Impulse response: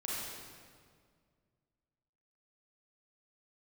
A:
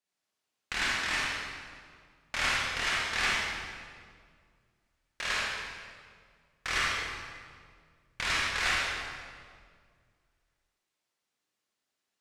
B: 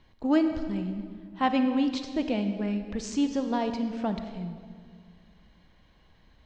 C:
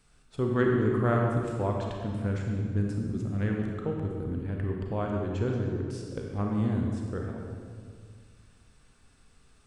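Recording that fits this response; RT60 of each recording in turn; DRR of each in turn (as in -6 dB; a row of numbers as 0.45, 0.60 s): A; 2.0, 2.0, 2.0 s; -6.5, 7.0, 0.0 dB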